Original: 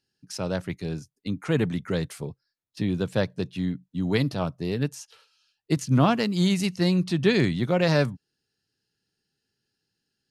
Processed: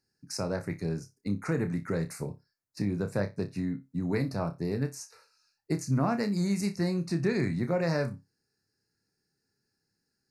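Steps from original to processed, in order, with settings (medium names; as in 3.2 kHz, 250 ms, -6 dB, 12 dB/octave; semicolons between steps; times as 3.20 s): compression 2:1, threshold -30 dBFS, peak gain reduction 9 dB; Butterworth band-stop 3.2 kHz, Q 1.5; on a send: flutter echo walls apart 5.1 m, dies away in 0.21 s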